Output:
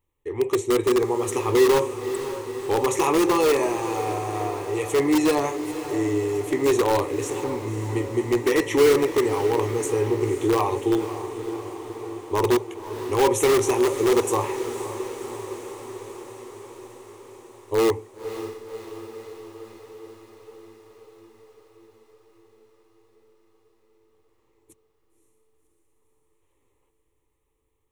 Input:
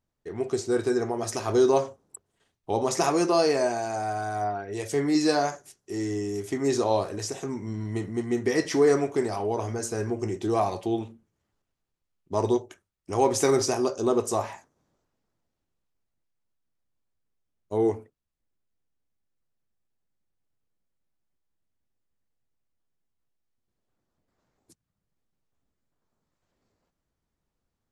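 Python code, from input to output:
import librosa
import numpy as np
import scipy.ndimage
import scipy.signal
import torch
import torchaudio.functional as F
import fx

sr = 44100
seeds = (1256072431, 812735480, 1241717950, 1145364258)

p1 = fx.fixed_phaser(x, sr, hz=1000.0, stages=8)
p2 = (np.mod(10.0 ** (20.0 / 20.0) * p1 + 1.0, 2.0) - 1.0) / 10.0 ** (20.0 / 20.0)
p3 = p1 + (p2 * librosa.db_to_amplitude(-7.0))
p4 = fx.echo_diffused(p3, sr, ms=544, feedback_pct=69, wet_db=-11.0)
y = p4 * librosa.db_to_amplitude(4.0)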